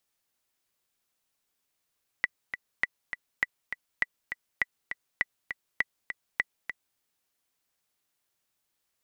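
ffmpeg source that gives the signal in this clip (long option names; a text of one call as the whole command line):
ffmpeg -f lavfi -i "aevalsrc='pow(10,(-11-9*gte(mod(t,2*60/202),60/202))/20)*sin(2*PI*1970*mod(t,60/202))*exp(-6.91*mod(t,60/202)/0.03)':duration=4.75:sample_rate=44100" out.wav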